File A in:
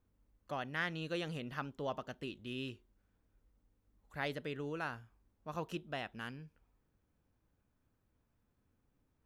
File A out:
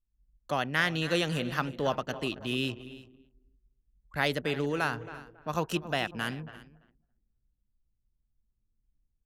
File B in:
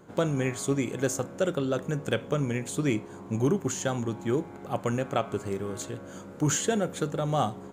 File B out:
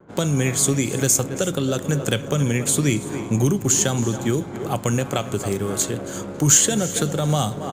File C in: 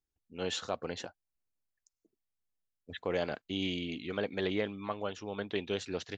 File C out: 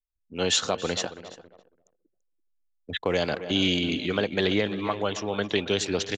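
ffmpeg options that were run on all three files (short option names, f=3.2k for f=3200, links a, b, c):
-filter_complex "[0:a]asplit=2[a][b];[b]adelay=274,lowpass=f=3.6k:p=1,volume=-15dB,asplit=2[c][d];[d]adelay=274,lowpass=f=3.6k:p=1,volume=0.48,asplit=2[e][f];[f]adelay=274,lowpass=f=3.6k:p=1,volume=0.48,asplit=2[g][h];[h]adelay=274,lowpass=f=3.6k:p=1,volume=0.48[i];[c][e][g][i]amix=inputs=4:normalize=0[j];[a][j]amix=inputs=2:normalize=0,anlmdn=0.000398,acrossover=split=190|3000[k][l][m];[l]acompressor=threshold=-32dB:ratio=6[n];[k][n][m]amix=inputs=3:normalize=0,aemphasis=mode=production:type=cd,asplit=2[o][p];[p]aecho=0:1:337:0.106[q];[o][q]amix=inputs=2:normalize=0,dynaudnorm=f=100:g=3:m=8dB,volume=2.5dB"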